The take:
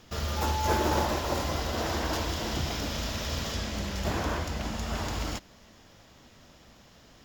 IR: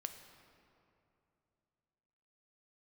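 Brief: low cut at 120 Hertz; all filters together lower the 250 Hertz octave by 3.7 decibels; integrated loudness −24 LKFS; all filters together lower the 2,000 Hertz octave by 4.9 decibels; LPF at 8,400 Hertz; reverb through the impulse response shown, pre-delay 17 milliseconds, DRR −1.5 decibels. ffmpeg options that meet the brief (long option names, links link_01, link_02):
-filter_complex "[0:a]highpass=120,lowpass=8400,equalizer=frequency=250:width_type=o:gain=-4.5,equalizer=frequency=2000:width_type=o:gain=-6.5,asplit=2[link_01][link_02];[1:a]atrim=start_sample=2205,adelay=17[link_03];[link_02][link_03]afir=irnorm=-1:irlink=0,volume=4dB[link_04];[link_01][link_04]amix=inputs=2:normalize=0,volume=6dB"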